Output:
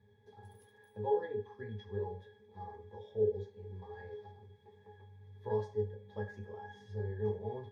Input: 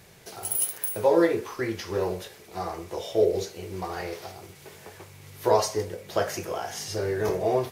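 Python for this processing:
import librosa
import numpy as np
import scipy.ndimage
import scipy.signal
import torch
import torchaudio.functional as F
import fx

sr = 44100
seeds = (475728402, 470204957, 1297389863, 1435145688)

y = fx.octave_resonator(x, sr, note='G#', decay_s=0.18)
y = y * librosa.db_to_amplitude(-1.0)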